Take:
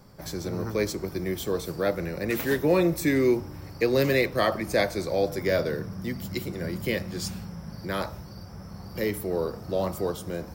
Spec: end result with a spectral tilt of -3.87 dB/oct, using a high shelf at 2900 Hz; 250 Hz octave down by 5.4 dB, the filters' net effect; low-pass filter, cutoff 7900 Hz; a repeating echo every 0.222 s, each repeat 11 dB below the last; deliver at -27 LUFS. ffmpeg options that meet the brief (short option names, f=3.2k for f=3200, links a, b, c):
-af "lowpass=7.9k,equalizer=f=250:t=o:g=-8.5,highshelf=f=2.9k:g=8.5,aecho=1:1:222|444|666:0.282|0.0789|0.0221,volume=1.5dB"